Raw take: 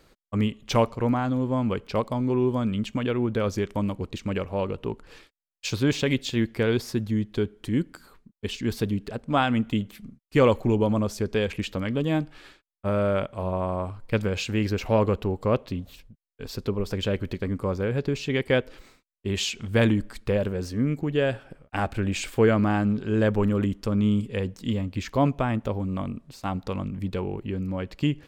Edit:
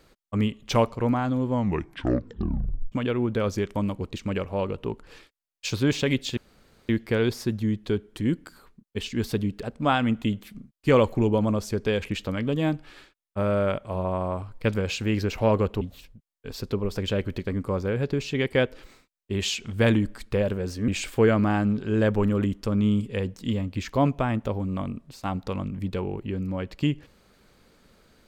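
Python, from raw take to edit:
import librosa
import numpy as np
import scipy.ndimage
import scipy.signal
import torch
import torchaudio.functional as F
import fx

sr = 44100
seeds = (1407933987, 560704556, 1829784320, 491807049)

y = fx.edit(x, sr, fx.tape_stop(start_s=1.5, length_s=1.42),
    fx.insert_room_tone(at_s=6.37, length_s=0.52),
    fx.cut(start_s=15.29, length_s=0.47),
    fx.cut(start_s=20.83, length_s=1.25), tone=tone)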